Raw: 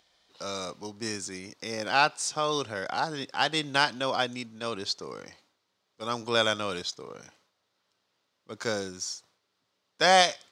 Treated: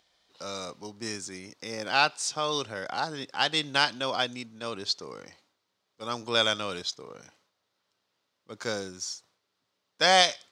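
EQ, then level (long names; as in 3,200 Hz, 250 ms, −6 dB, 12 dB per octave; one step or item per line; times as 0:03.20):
dynamic equaliser 3,700 Hz, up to +5 dB, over −36 dBFS, Q 0.8
−2.0 dB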